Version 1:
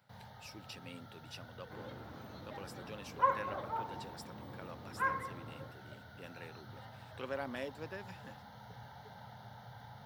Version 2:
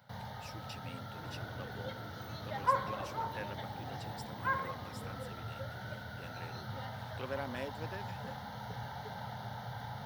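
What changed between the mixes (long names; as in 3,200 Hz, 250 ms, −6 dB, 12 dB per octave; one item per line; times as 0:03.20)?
first sound +9.0 dB
second sound: entry −0.55 s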